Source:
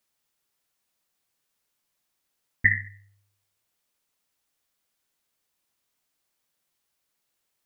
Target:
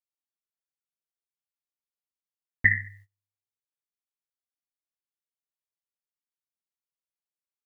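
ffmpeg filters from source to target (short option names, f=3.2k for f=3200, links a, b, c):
-af "agate=range=-25dB:threshold=-51dB:ratio=16:detection=peak"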